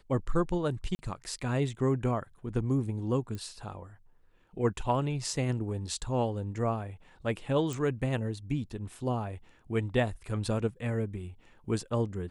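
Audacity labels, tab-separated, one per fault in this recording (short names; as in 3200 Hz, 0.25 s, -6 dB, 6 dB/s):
0.950000	0.990000	gap 40 ms
3.350000	3.350000	pop -26 dBFS
7.730000	7.730000	pop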